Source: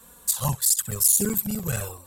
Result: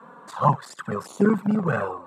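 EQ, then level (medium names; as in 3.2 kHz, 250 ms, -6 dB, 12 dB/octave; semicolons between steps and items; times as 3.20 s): high-pass 160 Hz 24 dB/octave; resonant low-pass 1.2 kHz, resonance Q 2; +8.0 dB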